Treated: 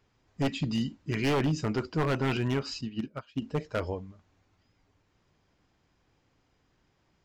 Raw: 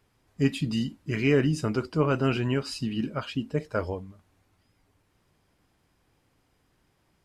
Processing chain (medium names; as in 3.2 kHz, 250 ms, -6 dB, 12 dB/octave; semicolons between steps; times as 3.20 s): resampled via 16 kHz; wavefolder -19 dBFS; 2.81–3.42 s: upward expansion 2.5:1, over -38 dBFS; trim -1.5 dB